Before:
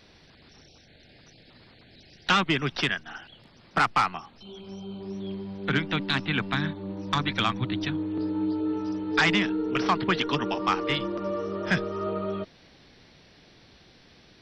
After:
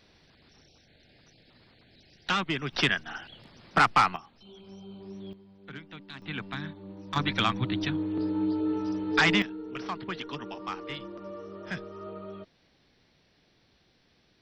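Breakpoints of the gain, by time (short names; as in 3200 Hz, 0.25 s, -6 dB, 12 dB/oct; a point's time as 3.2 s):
-5.5 dB
from 2.73 s +1.5 dB
from 4.16 s -7 dB
from 5.33 s -18 dB
from 6.22 s -9 dB
from 7.16 s -0.5 dB
from 9.42 s -11 dB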